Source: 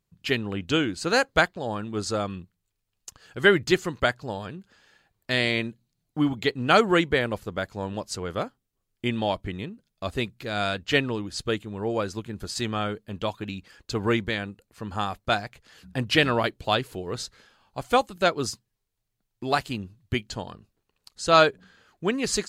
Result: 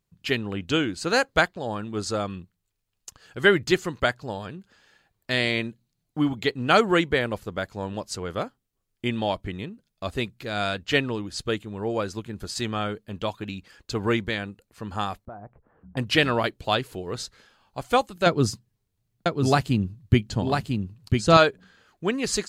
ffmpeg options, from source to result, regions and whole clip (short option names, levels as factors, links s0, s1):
-filter_complex "[0:a]asettb=1/sr,asplit=3[s0][s1][s2];[s0]atrim=end=15.254[s3];[s1]atrim=start=15.25:end=15.97,asetpts=PTS-STARTPTS,afade=t=in:d=0.004:c=qsin,afade=t=out:st=0.716:d=0.004:c=qsin,lowpass=f=1100:w=0.5412,lowpass=f=1100:w=1.3066,acompressor=threshold=0.0141:ratio=6:attack=3.2:release=140:knee=1:detection=peak[s4];[s2]atrim=start=15.966[s5];[s3][s4]acrossfade=d=0.004:c1=hsin:c2=qsin[s6];[s6][s5]acrossfade=d=0.004:c1=qsin:c2=hsin,asettb=1/sr,asplit=3[s7][s8][s9];[s7]atrim=end=18.264[s10];[s8]atrim=start=18.26:end=21.37,asetpts=PTS-STARTPTS,afade=t=in:d=0.004:c=qsin,afade=t=out:st=3.106:d=0.004:c=qsin,equalizer=f=130:w=0.45:g=12,aecho=1:1:997:0.631,atrim=end_sample=137151[s11];[s9]atrim=start=21.366[s12];[s10][s11]acrossfade=d=0.004:c1=hsin:c2=qsin[s13];[s13][s12]acrossfade=d=0.004:c1=qsin:c2=hsin"